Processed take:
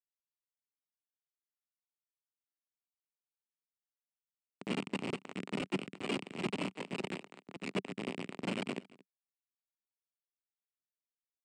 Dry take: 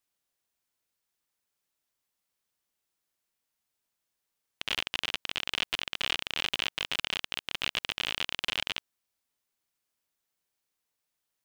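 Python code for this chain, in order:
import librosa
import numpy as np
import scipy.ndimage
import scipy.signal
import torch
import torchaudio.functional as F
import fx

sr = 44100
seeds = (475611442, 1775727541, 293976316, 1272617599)

y = fx.bin_expand(x, sr, power=3.0)
y = fx.hum_notches(y, sr, base_hz=50, count=7)
y = fx.transient(y, sr, attack_db=-3, sustain_db=9)
y = fx.schmitt(y, sr, flips_db=-41.0)
y = fx.cabinet(y, sr, low_hz=170.0, low_slope=24, high_hz=7000.0, hz=(190.0, 260.0, 390.0, 1600.0, 3400.0, 6200.0), db=(5, 5, 6, -6, -7, -8))
y = y + 10.0 ** (-22.0 / 20.0) * np.pad(y, (int(226 * sr / 1000.0), 0))[:len(y)]
y = fx.band_widen(y, sr, depth_pct=100, at=(5.61, 7.96))
y = y * 10.0 ** (16.5 / 20.0)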